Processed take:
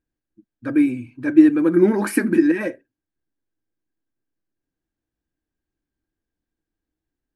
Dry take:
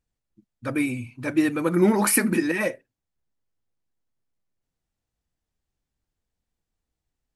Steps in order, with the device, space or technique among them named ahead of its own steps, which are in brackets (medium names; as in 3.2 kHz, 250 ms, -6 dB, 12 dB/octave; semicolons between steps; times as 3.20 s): inside a helmet (treble shelf 4.7 kHz -8.5 dB; small resonant body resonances 310/1600 Hz, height 14 dB, ringing for 35 ms); trim -3.5 dB